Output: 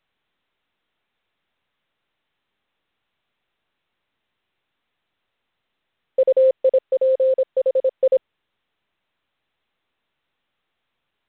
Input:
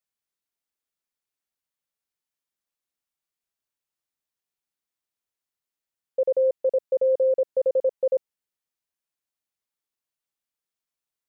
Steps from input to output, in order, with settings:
0:06.81–0:08.01: low-shelf EQ 390 Hz −8 dB
level +6 dB
mu-law 64 kbit/s 8,000 Hz

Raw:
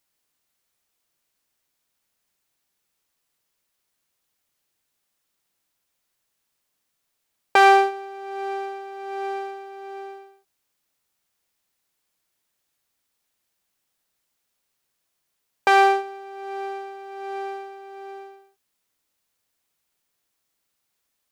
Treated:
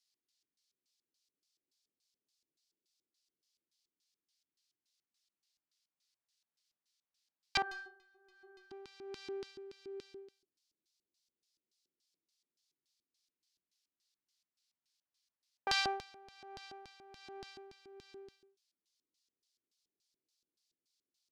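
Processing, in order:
auto-filter band-pass square 3.5 Hz 350–4,700 Hz
0:07.62–0:08.71: stiff-string resonator 370 Hz, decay 0.32 s, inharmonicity 0.008
all-pass phaser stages 2, 0.11 Hz, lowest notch 360–1,000 Hz
level +1 dB

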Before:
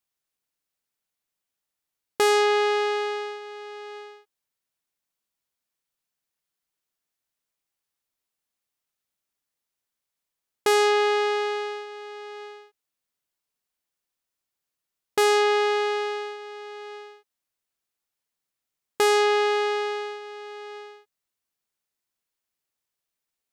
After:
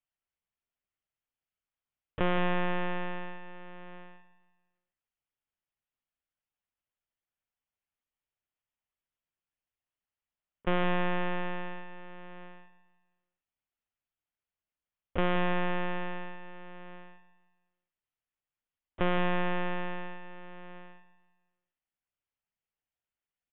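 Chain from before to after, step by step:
spring reverb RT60 1.2 s, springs 45/56 ms, chirp 20 ms, DRR 13 dB
one-pitch LPC vocoder at 8 kHz 200 Hz
on a send: repeating echo 174 ms, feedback 41%, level −13 dB
on the sum: pitch shifter −2 semitones
level −6.5 dB

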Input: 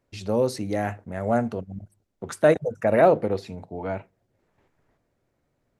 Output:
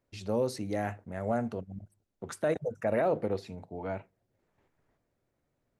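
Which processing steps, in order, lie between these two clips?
brickwall limiter −13 dBFS, peak gain reduction 7.5 dB
level −6 dB

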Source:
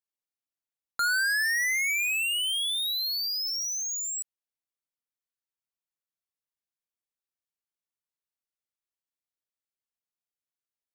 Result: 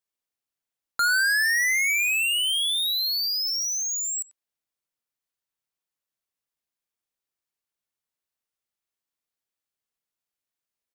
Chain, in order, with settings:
far-end echo of a speakerphone 90 ms, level −9 dB
level +4 dB

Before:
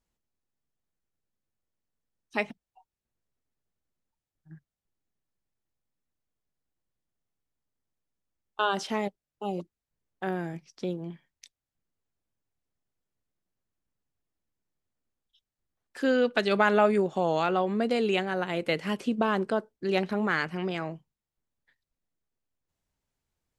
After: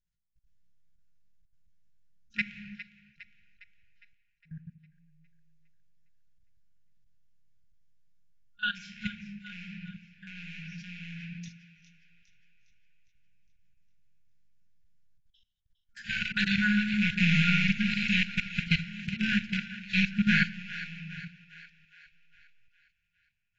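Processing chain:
loose part that buzzes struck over −37 dBFS, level −17 dBFS
rectangular room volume 230 cubic metres, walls mixed, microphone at 1.3 metres
output level in coarse steps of 22 dB
low-shelf EQ 460 Hz +4.5 dB
echo with a time of its own for lows and highs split 750 Hz, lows 82 ms, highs 408 ms, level −14 dB
brick-wall band-stop 220–1,400 Hz
AAC 24 kbit/s 16,000 Hz

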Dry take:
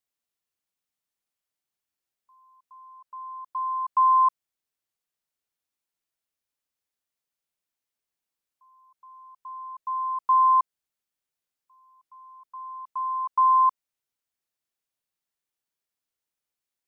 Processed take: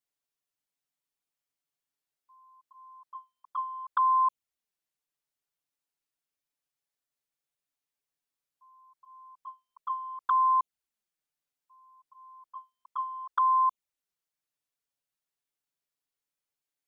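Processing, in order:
flanger swept by the level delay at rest 7 ms, full sweep at −19.5 dBFS

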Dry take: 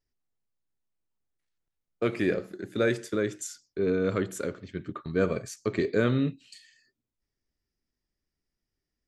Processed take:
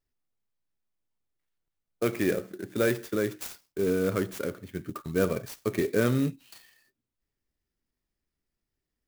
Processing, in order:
converter with an unsteady clock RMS 0.037 ms

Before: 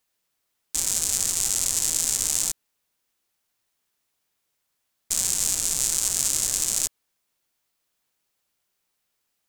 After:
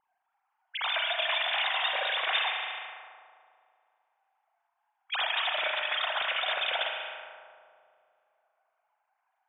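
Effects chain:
three sine waves on the formant tracks
spring reverb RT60 2.5 s, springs 36 ms, chirp 70 ms, DRR 0.5 dB
low-pass that shuts in the quiet parts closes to 820 Hz, open at −19.5 dBFS
level −7.5 dB

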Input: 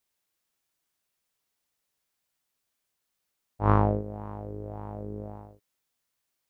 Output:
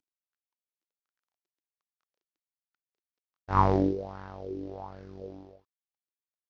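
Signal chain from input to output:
variable-slope delta modulation 32 kbit/s
source passing by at 0:02.33, 30 m/s, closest 20 metres
auto-filter bell 1.3 Hz 290–1,600 Hz +17 dB
level +2.5 dB

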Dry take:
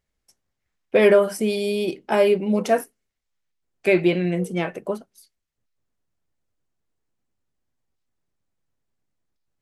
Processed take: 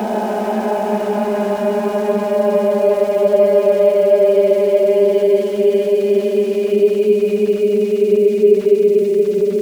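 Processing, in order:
extreme stretch with random phases 42×, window 0.10 s, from 0:02.12
graphic EQ with 10 bands 250 Hz +9 dB, 500 Hz +6 dB, 2,000 Hz −5 dB, 8,000 Hz −12 dB
centre clipping without the shift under −27 dBFS
level −4 dB

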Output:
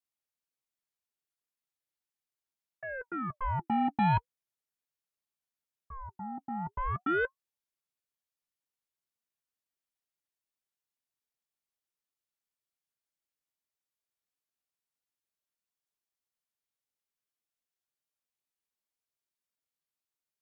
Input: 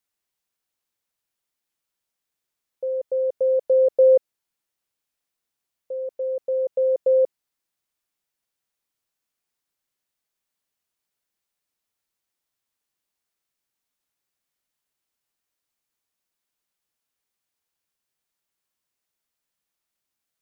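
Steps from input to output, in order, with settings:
harmonic generator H 2 −18 dB, 4 −19 dB, 7 −29 dB, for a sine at −9.5 dBFS
notch comb filter 250 Hz
ring modulator whose carrier an LFO sweeps 780 Hz, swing 65%, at 0.39 Hz
level −4.5 dB

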